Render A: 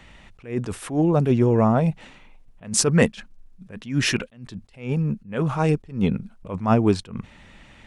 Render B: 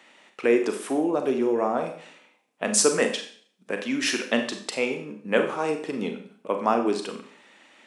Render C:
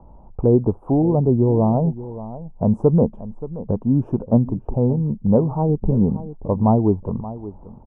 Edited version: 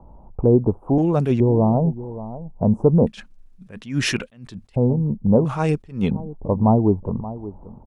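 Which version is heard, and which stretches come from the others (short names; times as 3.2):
C
0.98–1.4 from A
3.07–4.76 from A
5.45–6.11 from A
not used: B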